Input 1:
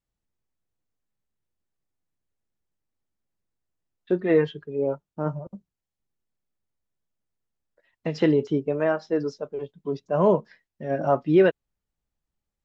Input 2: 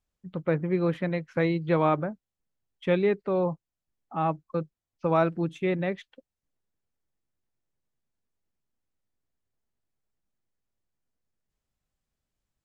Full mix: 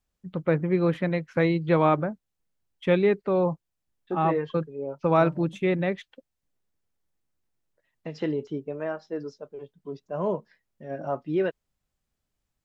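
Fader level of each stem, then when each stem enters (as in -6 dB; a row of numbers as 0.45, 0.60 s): -8.0, +2.5 dB; 0.00, 0.00 s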